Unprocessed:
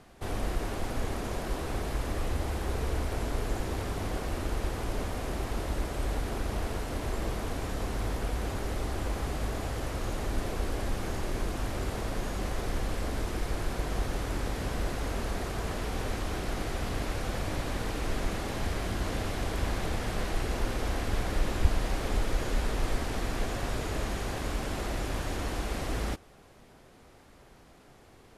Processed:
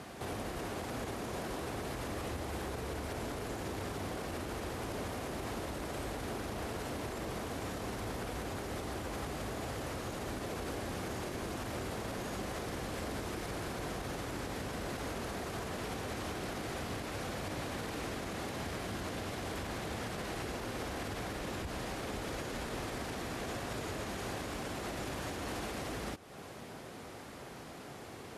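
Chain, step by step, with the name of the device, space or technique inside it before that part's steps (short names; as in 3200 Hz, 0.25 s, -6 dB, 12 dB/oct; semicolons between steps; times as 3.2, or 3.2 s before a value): podcast mastering chain (HPF 100 Hz 12 dB/oct; compressor 3:1, threshold -46 dBFS, peak gain reduction 15 dB; limiter -39.5 dBFS, peak gain reduction 7.5 dB; gain +9.5 dB; MP3 96 kbps 48000 Hz)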